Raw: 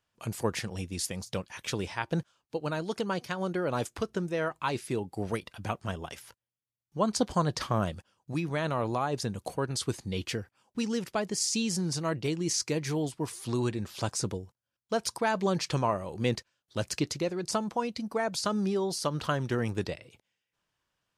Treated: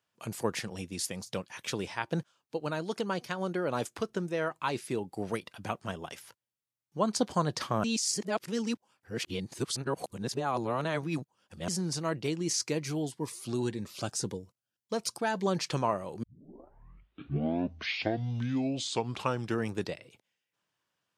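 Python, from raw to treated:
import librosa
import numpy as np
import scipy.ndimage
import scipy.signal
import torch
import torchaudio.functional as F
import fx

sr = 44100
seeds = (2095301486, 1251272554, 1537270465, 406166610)

y = fx.notch_cascade(x, sr, direction='rising', hz=1.8, at=(12.8, 15.46))
y = fx.edit(y, sr, fx.reverse_span(start_s=7.84, length_s=3.84),
    fx.tape_start(start_s=16.23, length_s=3.51), tone=tone)
y = scipy.signal.sosfilt(scipy.signal.butter(2, 130.0, 'highpass', fs=sr, output='sos'), y)
y = y * 10.0 ** (-1.0 / 20.0)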